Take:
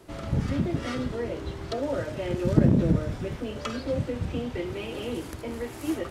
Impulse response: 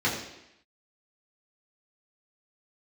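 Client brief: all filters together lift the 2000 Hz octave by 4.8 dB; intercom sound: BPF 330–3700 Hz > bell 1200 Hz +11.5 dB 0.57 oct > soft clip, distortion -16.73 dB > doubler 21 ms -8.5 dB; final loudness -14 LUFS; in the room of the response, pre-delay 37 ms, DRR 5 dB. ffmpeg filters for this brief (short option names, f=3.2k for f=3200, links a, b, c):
-filter_complex "[0:a]equalizer=f=2k:t=o:g=3,asplit=2[a][b];[1:a]atrim=start_sample=2205,adelay=37[c];[b][c]afir=irnorm=-1:irlink=0,volume=-17.5dB[d];[a][d]amix=inputs=2:normalize=0,highpass=330,lowpass=3.7k,equalizer=f=1.2k:t=o:w=0.57:g=11.5,asoftclip=threshold=-20dB,asplit=2[e][f];[f]adelay=21,volume=-8.5dB[g];[e][g]amix=inputs=2:normalize=0,volume=16.5dB"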